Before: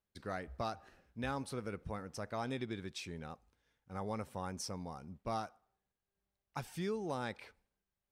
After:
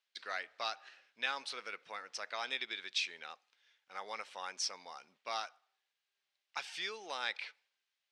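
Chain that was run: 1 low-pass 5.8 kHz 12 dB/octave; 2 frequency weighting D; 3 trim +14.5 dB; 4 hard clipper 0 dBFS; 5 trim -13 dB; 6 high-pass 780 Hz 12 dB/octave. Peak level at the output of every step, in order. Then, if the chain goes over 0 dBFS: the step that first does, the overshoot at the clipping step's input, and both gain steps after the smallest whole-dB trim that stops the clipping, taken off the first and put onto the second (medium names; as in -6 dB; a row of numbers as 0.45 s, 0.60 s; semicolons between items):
-26.0 dBFS, -19.5 dBFS, -5.0 dBFS, -5.0 dBFS, -18.0 dBFS, -19.0 dBFS; nothing clips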